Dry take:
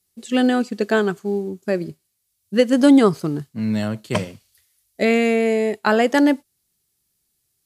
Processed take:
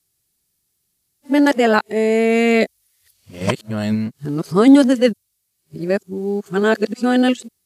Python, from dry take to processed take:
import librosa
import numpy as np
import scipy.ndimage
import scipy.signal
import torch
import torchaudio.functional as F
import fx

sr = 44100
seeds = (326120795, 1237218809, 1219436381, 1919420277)

p1 = x[::-1].copy()
p2 = fx.level_steps(p1, sr, step_db=10)
p3 = p1 + F.gain(torch.from_numpy(p2), -3.0).numpy()
y = F.gain(torch.from_numpy(p3), -1.0).numpy()